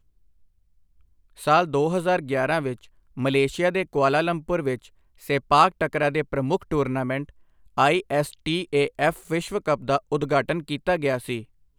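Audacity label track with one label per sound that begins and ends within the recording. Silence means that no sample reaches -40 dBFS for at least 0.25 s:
1.380000	2.850000	sound
3.170000	4.860000	sound
5.220000	7.290000	sound
7.770000	11.430000	sound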